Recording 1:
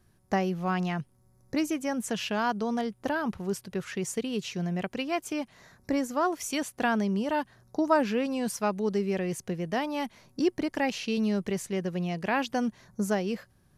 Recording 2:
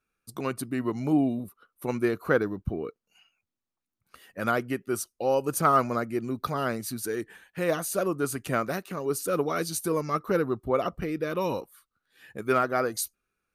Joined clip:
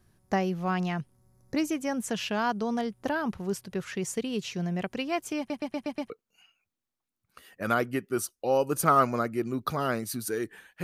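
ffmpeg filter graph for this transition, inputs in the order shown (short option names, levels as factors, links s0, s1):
-filter_complex "[0:a]apad=whole_dur=10.83,atrim=end=10.83,asplit=6[s0][s1][s2][s3][s4][s5];[s0]atrim=end=5.502[s6];[s1]atrim=start=5.378:end=5.502[s7];[s2]atrim=start=5.378:end=5.502[s8];[s3]atrim=start=5.378:end=5.502[s9];[s4]atrim=start=5.378:end=5.502[s10];[s5]atrim=start=5.378:end=5.502[s11];[1:a]atrim=start=2.868:end=7.6[s12];[s6][s7]acrossfade=d=0.004:c1=hsin:c2=hsin[s13];[s13][s8]acrossfade=d=0.004:c1=hsin:c2=hsin[s14];[s14][s9]acrossfade=d=0.004:c1=hsin:c2=hsin[s15];[s15][s10]acrossfade=d=0.004:c1=hsin:c2=hsin[s16];[s16][s11]acrossfade=d=0.004:c1=hsin:c2=hsin[s17];[s17][s12]acrossfade=d=0.004:c1=hsin:c2=hsin"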